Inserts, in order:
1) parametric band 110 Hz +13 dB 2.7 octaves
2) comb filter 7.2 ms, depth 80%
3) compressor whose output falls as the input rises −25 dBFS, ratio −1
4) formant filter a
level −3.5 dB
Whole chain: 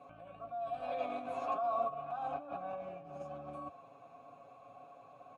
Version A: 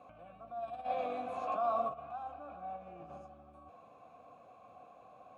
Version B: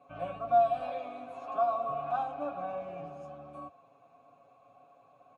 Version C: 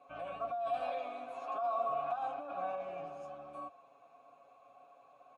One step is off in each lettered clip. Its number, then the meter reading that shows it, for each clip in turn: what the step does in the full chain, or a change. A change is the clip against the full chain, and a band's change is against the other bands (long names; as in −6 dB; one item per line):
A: 2, 125 Hz band −2.5 dB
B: 3, 250 Hz band −2.5 dB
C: 1, 125 Hz band −7.0 dB